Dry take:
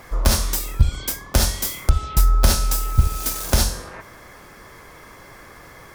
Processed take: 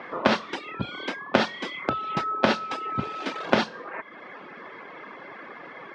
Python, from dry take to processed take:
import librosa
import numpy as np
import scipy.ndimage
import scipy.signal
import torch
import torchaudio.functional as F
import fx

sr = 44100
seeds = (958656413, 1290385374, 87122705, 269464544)

y = scipy.signal.sosfilt(scipy.signal.butter(4, 200.0, 'highpass', fs=sr, output='sos'), x)
y = fx.dereverb_blind(y, sr, rt60_s=0.83)
y = scipy.signal.sosfilt(scipy.signal.butter(4, 3100.0, 'lowpass', fs=sr, output='sos'), y)
y = y * librosa.db_to_amplitude(5.0)